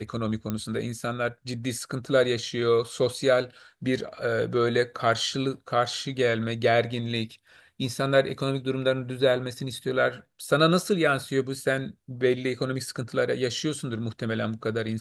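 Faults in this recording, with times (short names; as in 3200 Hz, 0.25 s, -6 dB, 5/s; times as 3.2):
0.5 pop -16 dBFS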